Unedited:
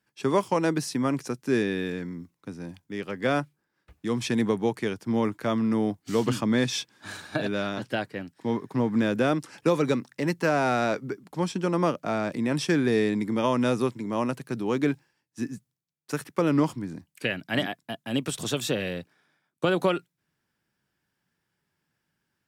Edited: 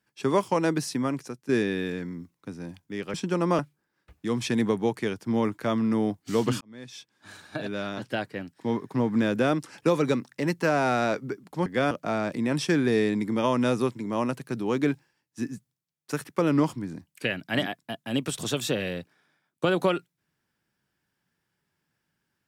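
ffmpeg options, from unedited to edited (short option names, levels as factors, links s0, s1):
-filter_complex "[0:a]asplit=7[s0][s1][s2][s3][s4][s5][s6];[s0]atrim=end=1.49,asetpts=PTS-STARTPTS,afade=t=out:st=0.91:d=0.58:silence=0.281838[s7];[s1]atrim=start=1.49:end=3.142,asetpts=PTS-STARTPTS,afade=t=in:d=0.004:c=hsin:silence=0.281838[s8];[s2]atrim=start=11.458:end=11.912[s9];[s3]atrim=start=3.388:end=6.41,asetpts=PTS-STARTPTS,afade=t=out:st=3.018:d=0.004:c=hsin[s10];[s4]atrim=start=6.41:end=11.462,asetpts=PTS-STARTPTS,afade=t=in:d=1.73[s11];[s5]atrim=start=3.138:end=3.392[s12];[s6]atrim=start=11.908[s13];[s7][s8]concat=n=2:v=0:a=1[s14];[s14][s9]acrossfade=d=0.004:c1=hsin:c2=hsin[s15];[s10][s11]concat=n=2:v=0:a=1[s16];[s15][s16]acrossfade=d=0.004:c1=hsin:c2=hsin[s17];[s17][s12]acrossfade=d=0.004:c1=hsin:c2=hsin[s18];[s18][s13]acrossfade=d=0.004:c1=hsin:c2=hsin"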